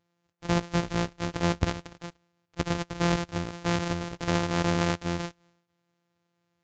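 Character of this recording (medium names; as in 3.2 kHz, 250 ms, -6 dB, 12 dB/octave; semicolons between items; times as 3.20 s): a buzz of ramps at a fixed pitch in blocks of 256 samples; Vorbis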